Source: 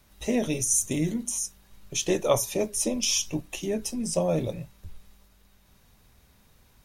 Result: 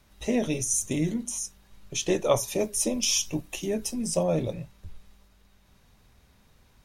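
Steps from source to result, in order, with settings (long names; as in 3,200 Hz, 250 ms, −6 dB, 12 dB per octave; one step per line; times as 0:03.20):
high-shelf EQ 10,000 Hz −8.5 dB, from 0:02.48 +2 dB, from 0:04.23 −10 dB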